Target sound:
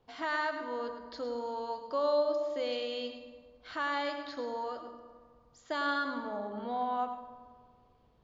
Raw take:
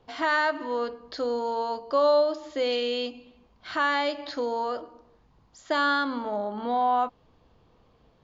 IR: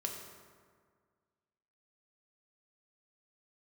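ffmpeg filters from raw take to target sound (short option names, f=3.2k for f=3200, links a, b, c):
-filter_complex "[0:a]asplit=2[a][b];[1:a]atrim=start_sample=2205,lowshelf=f=180:g=10.5,adelay=105[c];[b][c]afir=irnorm=-1:irlink=0,volume=-8.5dB[d];[a][d]amix=inputs=2:normalize=0,volume=-9dB"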